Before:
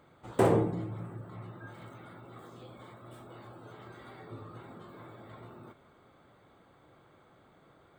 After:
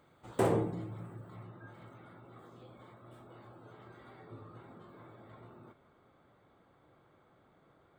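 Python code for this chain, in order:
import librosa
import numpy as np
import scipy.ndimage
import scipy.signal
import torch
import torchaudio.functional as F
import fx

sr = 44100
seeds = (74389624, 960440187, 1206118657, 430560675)

y = fx.high_shelf(x, sr, hz=3500.0, db=fx.steps((0.0, 3.5), (1.42, -6.5)))
y = F.gain(torch.from_numpy(y), -4.5).numpy()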